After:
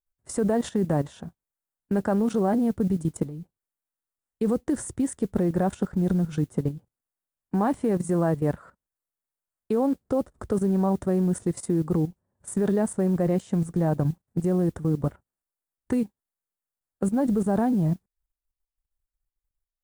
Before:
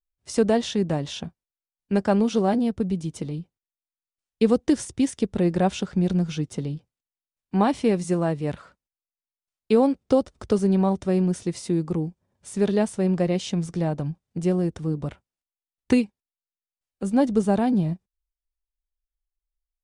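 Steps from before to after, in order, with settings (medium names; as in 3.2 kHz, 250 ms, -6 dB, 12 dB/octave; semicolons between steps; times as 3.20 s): high-order bell 3.7 kHz -13.5 dB; level held to a coarse grid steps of 14 dB; modulation noise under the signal 34 dB; trim +6 dB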